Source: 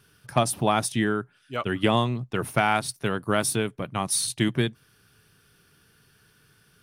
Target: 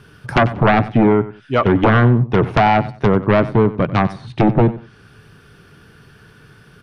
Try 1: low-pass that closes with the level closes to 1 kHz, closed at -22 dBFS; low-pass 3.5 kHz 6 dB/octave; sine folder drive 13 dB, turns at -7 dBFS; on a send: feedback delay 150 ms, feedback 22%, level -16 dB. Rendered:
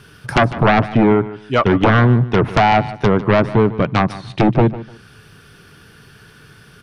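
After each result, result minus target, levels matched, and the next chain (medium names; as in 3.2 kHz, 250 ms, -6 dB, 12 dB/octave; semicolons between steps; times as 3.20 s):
echo 57 ms late; 4 kHz band +3.0 dB
low-pass that closes with the level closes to 1 kHz, closed at -22 dBFS; low-pass 3.5 kHz 6 dB/octave; sine folder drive 13 dB, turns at -7 dBFS; on a send: feedback delay 93 ms, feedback 22%, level -16 dB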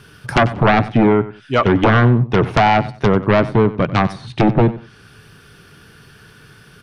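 4 kHz band +3.0 dB
low-pass that closes with the level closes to 1 kHz, closed at -22 dBFS; low-pass 1.5 kHz 6 dB/octave; sine folder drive 13 dB, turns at -7 dBFS; on a send: feedback delay 93 ms, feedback 22%, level -16 dB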